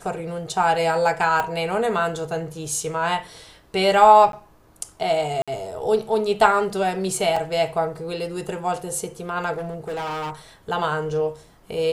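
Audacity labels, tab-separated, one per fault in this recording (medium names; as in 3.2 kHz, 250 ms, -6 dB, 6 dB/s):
1.400000	1.400000	pop -11 dBFS
4.320000	4.330000	dropout
5.420000	5.480000	dropout 56 ms
7.360000	7.360000	dropout 4.5 ms
9.570000	10.310000	clipped -25.5 dBFS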